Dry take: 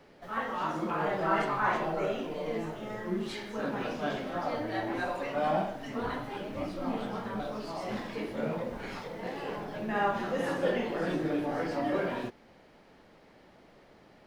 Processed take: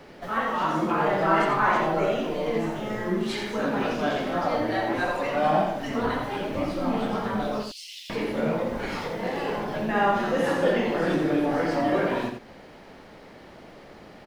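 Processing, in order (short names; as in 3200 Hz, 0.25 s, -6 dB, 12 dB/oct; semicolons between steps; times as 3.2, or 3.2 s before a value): 7.63–8.1 steep high-pass 2700 Hz 48 dB/oct; in parallel at -1 dB: compressor, threshold -41 dBFS, peak gain reduction 17 dB; on the sum: echo 85 ms -6.5 dB; gain +4.5 dB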